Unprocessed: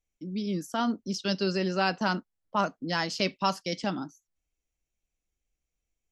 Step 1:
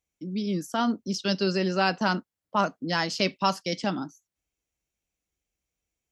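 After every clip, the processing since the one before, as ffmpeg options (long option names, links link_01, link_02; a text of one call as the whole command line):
ffmpeg -i in.wav -af "highpass=63,volume=2.5dB" out.wav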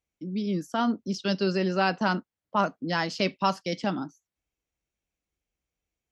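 ffmpeg -i in.wav -af "highshelf=frequency=5900:gain=-11" out.wav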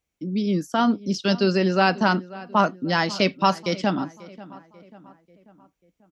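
ffmpeg -i in.wav -filter_complex "[0:a]asplit=2[link_01][link_02];[link_02]adelay=540,lowpass=frequency=2500:poles=1,volume=-18.5dB,asplit=2[link_03][link_04];[link_04]adelay=540,lowpass=frequency=2500:poles=1,volume=0.51,asplit=2[link_05][link_06];[link_06]adelay=540,lowpass=frequency=2500:poles=1,volume=0.51,asplit=2[link_07][link_08];[link_08]adelay=540,lowpass=frequency=2500:poles=1,volume=0.51[link_09];[link_01][link_03][link_05][link_07][link_09]amix=inputs=5:normalize=0,volume=5.5dB" out.wav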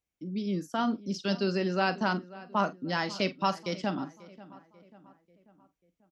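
ffmpeg -i in.wav -filter_complex "[0:a]asplit=2[link_01][link_02];[link_02]adelay=45,volume=-14dB[link_03];[link_01][link_03]amix=inputs=2:normalize=0,volume=-8.5dB" out.wav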